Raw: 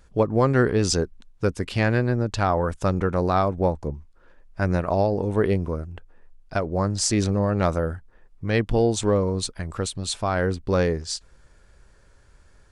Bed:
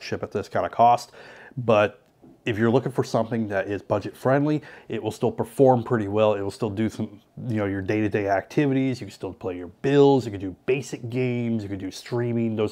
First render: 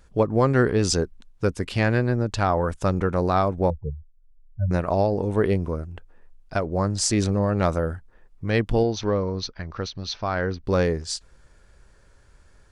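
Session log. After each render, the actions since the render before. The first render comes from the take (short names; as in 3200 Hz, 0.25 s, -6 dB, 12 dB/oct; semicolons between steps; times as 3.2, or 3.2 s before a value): 3.7–4.71 spectral contrast raised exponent 4; 8.83–10.64 rippled Chebyshev low-pass 6100 Hz, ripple 3 dB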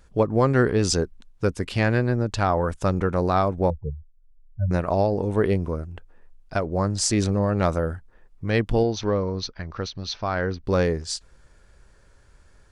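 nothing audible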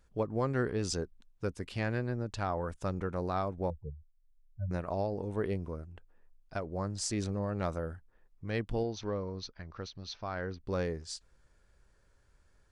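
gain -12 dB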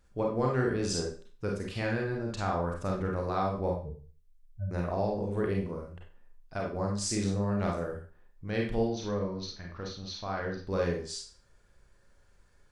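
Schroeder reverb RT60 0.39 s, combs from 31 ms, DRR -1 dB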